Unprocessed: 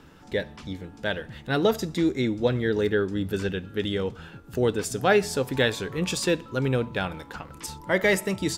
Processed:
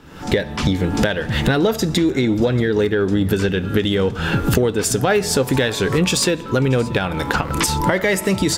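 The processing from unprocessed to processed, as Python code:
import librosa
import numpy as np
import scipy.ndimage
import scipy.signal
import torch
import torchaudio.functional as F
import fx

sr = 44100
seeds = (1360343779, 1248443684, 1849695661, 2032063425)

p1 = fx.recorder_agc(x, sr, target_db=-12.0, rise_db_per_s=68.0, max_gain_db=30)
p2 = 10.0 ** (-20.0 / 20.0) * np.tanh(p1 / 10.0 ** (-20.0 / 20.0))
p3 = p1 + F.gain(torch.from_numpy(p2), -8.0).numpy()
p4 = p3 + 10.0 ** (-21.0 / 20.0) * np.pad(p3, (int(632 * sr / 1000.0), 0))[:len(p3)]
y = F.gain(torch.from_numpy(p4), 1.0).numpy()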